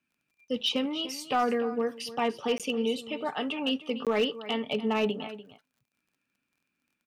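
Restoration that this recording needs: clip repair -19 dBFS; de-click; interpolate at 2.58/4.05 s, 17 ms; inverse comb 294 ms -15 dB

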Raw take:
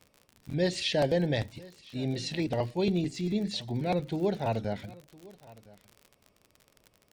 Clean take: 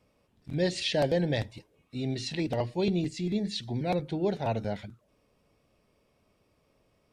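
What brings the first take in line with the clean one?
de-click; inverse comb 1010 ms -22 dB

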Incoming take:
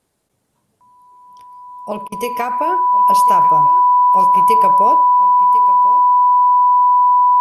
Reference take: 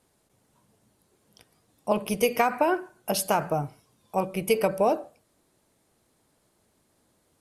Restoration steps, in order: band-stop 990 Hz, Q 30; interpolate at 2.08 s, 40 ms; inverse comb 1046 ms -17 dB

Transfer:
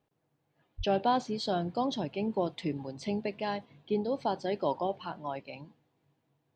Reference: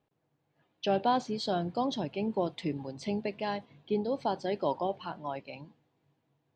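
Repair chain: 0.77–0.89 s: high-pass 140 Hz 24 dB/octave

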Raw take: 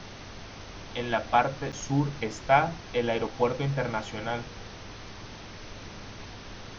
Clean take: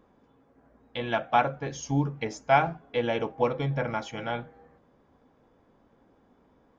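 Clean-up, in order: de-hum 103.2 Hz, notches 4; interpolate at 1.72 s, 6.9 ms; noise print and reduce 20 dB

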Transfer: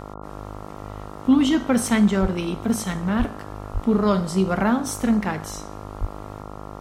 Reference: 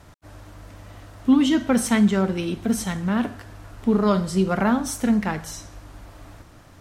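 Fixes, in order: de-hum 51.1 Hz, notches 27; de-plosive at 2.21/3.18/3.73/6.00 s

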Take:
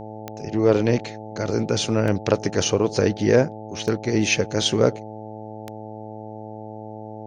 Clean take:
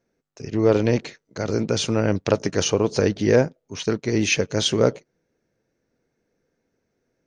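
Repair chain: de-click; de-hum 108.2 Hz, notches 8

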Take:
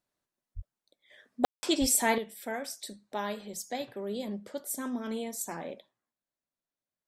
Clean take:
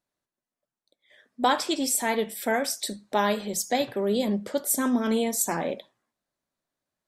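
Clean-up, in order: 0.55–0.67 s: high-pass 140 Hz 24 dB/octave; 1.80–1.92 s: high-pass 140 Hz 24 dB/octave; room tone fill 1.45–1.63 s; trim 0 dB, from 2.18 s +10.5 dB

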